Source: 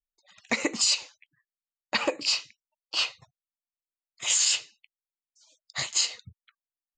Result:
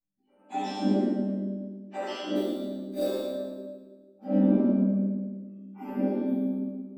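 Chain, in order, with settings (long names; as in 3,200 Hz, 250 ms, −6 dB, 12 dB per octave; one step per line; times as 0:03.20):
frequency axis turned over on the octave scale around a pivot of 1,300 Hz
high-shelf EQ 5,700 Hz −9 dB
0:02.35–0:03.02: sample-rate reduction 4,200 Hz, jitter 0%
resonators tuned to a chord G3 sus4, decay 0.68 s
0:04.55–0:05.88: phaser with its sweep stopped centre 2,600 Hz, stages 8
on a send: echo with a time of its own for lows and highs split 480 Hz, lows 168 ms, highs 112 ms, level −7 dB
on the sum: rectangular room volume 550 cubic metres, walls mixed, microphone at 8.3 metres
level +3 dB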